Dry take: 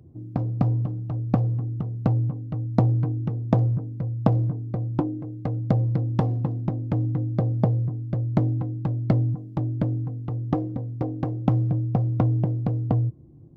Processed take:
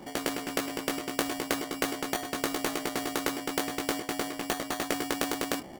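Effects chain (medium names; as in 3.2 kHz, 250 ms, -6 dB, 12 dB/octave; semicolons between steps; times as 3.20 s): early reflections 39 ms -4.5 dB, 60 ms -8.5 dB; in parallel at -4.5 dB: sample-rate reducer 1.1 kHz, jitter 0%; on the sum: speed mistake 33 rpm record played at 78 rpm; spectrum-flattening compressor 2:1; trim -5 dB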